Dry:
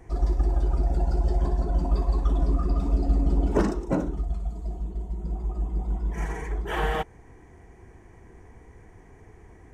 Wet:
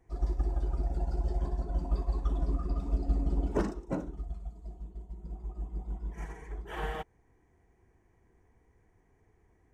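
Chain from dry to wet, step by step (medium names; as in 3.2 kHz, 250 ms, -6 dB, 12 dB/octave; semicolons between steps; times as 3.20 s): upward expansion 1.5:1, over -39 dBFS; trim -5.5 dB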